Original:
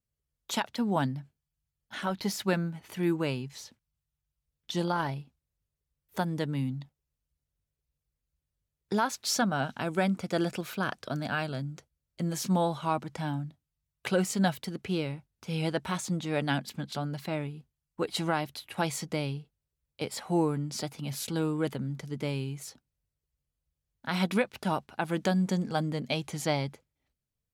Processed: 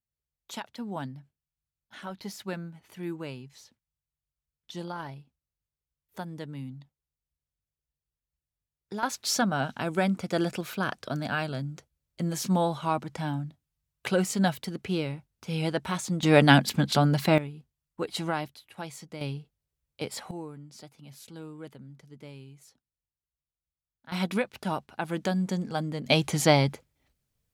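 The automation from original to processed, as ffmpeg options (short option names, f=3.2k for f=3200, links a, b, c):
-af "asetnsamples=n=441:p=0,asendcmd='9.03 volume volume 1.5dB;16.23 volume volume 11.5dB;17.38 volume volume -1dB;18.48 volume volume -9dB;19.21 volume volume 0dB;20.31 volume volume -13dB;24.12 volume volume -1dB;26.06 volume volume 8.5dB',volume=-7.5dB"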